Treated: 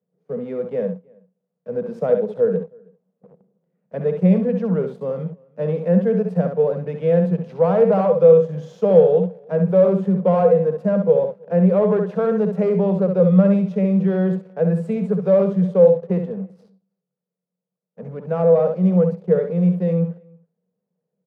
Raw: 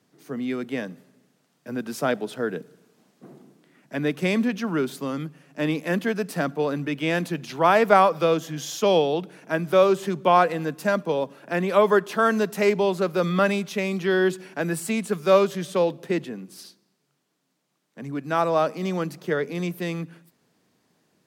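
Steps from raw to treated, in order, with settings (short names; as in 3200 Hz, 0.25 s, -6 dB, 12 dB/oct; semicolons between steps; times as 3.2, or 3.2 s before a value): on a send: feedback echo 66 ms, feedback 17%, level -7.5 dB; on the sum: sample leveller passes 3; double band-pass 300 Hz, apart 1.4 oct; outdoor echo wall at 55 m, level -28 dB; gain +3 dB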